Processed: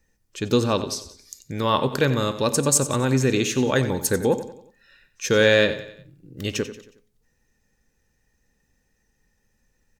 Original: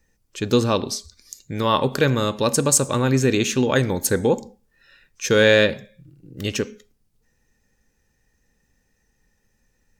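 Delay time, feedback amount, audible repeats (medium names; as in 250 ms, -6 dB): 91 ms, 47%, 4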